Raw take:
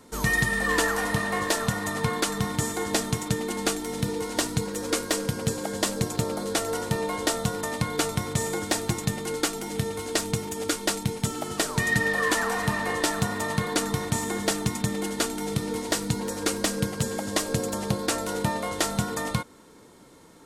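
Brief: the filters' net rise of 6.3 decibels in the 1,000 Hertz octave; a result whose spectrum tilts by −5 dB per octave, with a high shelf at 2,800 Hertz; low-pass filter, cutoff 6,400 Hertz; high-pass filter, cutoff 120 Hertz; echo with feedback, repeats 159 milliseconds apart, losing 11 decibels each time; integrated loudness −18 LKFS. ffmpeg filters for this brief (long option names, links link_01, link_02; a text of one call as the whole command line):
ffmpeg -i in.wav -af "highpass=120,lowpass=6400,equalizer=frequency=1000:width_type=o:gain=8.5,highshelf=frequency=2800:gain=-6.5,aecho=1:1:159|318|477:0.282|0.0789|0.0221,volume=8dB" out.wav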